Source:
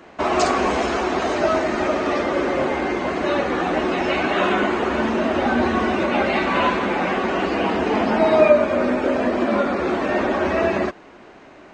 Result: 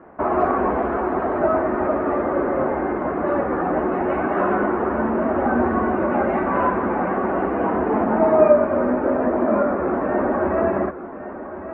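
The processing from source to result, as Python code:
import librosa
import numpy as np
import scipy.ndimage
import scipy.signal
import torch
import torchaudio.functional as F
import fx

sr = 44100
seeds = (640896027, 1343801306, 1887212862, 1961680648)

p1 = scipy.signal.sosfilt(scipy.signal.butter(4, 1500.0, 'lowpass', fs=sr, output='sos'), x)
y = p1 + fx.echo_single(p1, sr, ms=1111, db=-12.0, dry=0)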